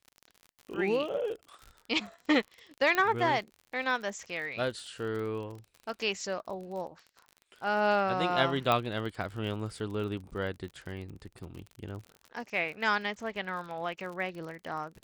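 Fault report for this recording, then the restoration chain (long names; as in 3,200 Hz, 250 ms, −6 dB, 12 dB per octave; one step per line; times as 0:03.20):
surface crackle 46 per second −39 dBFS
0:02.95: click −15 dBFS
0:08.72: click −14 dBFS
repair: click removal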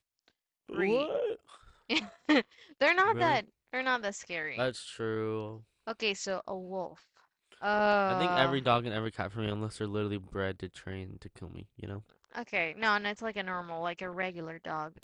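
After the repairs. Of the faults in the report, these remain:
0:02.95: click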